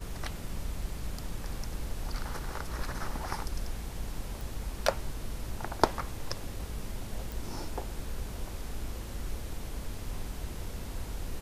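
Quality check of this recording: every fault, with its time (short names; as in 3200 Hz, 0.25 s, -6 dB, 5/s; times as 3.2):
4.41 pop
7.32 pop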